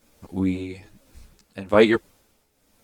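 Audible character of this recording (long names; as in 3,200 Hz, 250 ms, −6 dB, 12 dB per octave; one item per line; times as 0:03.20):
a quantiser's noise floor 12 bits, dither none
tremolo triangle 1.1 Hz, depth 75%
a shimmering, thickened sound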